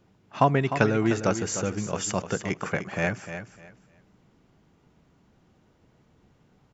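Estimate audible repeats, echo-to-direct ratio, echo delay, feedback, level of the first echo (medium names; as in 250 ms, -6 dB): 2, -10.0 dB, 303 ms, 22%, -10.0 dB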